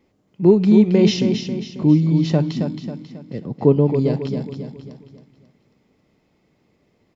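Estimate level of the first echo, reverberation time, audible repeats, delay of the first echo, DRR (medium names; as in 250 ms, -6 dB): -7.0 dB, no reverb, 4, 271 ms, no reverb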